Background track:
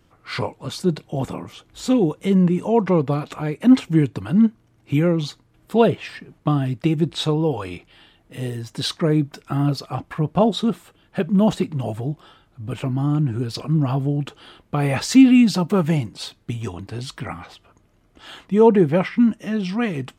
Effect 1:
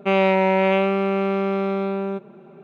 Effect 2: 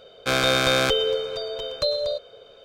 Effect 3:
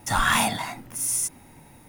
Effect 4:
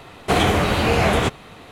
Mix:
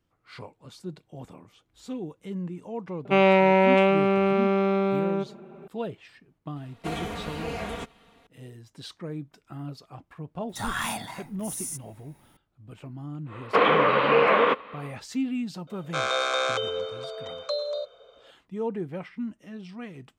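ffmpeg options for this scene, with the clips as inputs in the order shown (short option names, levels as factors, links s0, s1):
-filter_complex "[4:a]asplit=2[s0][s1];[0:a]volume=0.141[s2];[s0]aecho=1:1:4.3:0.63[s3];[s1]highpass=f=260:w=0.5412,highpass=f=260:w=1.3066,equalizer=f=350:t=q:w=4:g=-10,equalizer=f=500:t=q:w=4:g=9,equalizer=f=730:t=q:w=4:g=-9,equalizer=f=1100:t=q:w=4:g=9,lowpass=f=2900:w=0.5412,lowpass=f=2900:w=1.3066[s4];[2:a]highpass=f=460:w=0.5412,highpass=f=460:w=1.3066,equalizer=f=1200:t=q:w=4:g=6,equalizer=f=1800:t=q:w=4:g=-6,equalizer=f=2900:t=q:w=4:g=-6,equalizer=f=4800:t=q:w=4:g=-10,lowpass=f=7400:w=0.5412,lowpass=f=7400:w=1.3066[s5];[1:a]atrim=end=2.63,asetpts=PTS-STARTPTS,volume=0.944,afade=t=in:d=0.004:c=hsin,afade=t=out:st=2.626:d=0.004:c=hsin,adelay=134505S[s6];[s3]atrim=end=1.71,asetpts=PTS-STARTPTS,volume=0.133,afade=t=in:d=0.004:c=hsin,afade=t=out:st=1.706:d=0.004:c=hsin,adelay=6560[s7];[3:a]atrim=end=1.88,asetpts=PTS-STARTPTS,volume=0.355,afade=t=in:d=0.004:c=hsin,afade=t=out:st=1.876:d=0.004:c=hsin,adelay=10490[s8];[s4]atrim=end=1.71,asetpts=PTS-STARTPTS,volume=0.841,afade=t=in:d=0.1,afade=t=out:st=1.61:d=0.1,adelay=13250[s9];[s5]atrim=end=2.64,asetpts=PTS-STARTPTS,volume=0.631,afade=t=in:d=0.004:c=hsin,afade=t=out:st=2.636:d=0.004:c=hsin,adelay=15670[s10];[s2][s6][s7][s8][s9][s10]amix=inputs=6:normalize=0"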